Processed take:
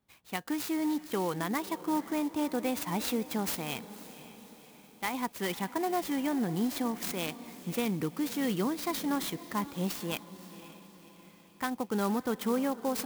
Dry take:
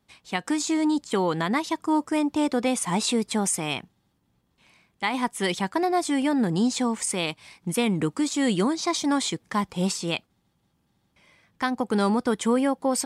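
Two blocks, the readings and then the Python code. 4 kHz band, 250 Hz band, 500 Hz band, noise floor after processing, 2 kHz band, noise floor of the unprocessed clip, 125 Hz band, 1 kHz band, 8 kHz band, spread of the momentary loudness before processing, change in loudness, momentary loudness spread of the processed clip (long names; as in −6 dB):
−9.0 dB, −7.5 dB, −7.5 dB, −57 dBFS, −8.0 dB, −71 dBFS, −7.0 dB, −7.5 dB, −11.0 dB, 6 LU, −7.5 dB, 16 LU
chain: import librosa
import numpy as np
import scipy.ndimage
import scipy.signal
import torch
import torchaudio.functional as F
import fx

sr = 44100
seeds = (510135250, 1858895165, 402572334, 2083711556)

y = fx.echo_diffused(x, sr, ms=541, feedback_pct=51, wet_db=-15.0)
y = fx.clock_jitter(y, sr, seeds[0], jitter_ms=0.039)
y = y * 10.0 ** (-7.5 / 20.0)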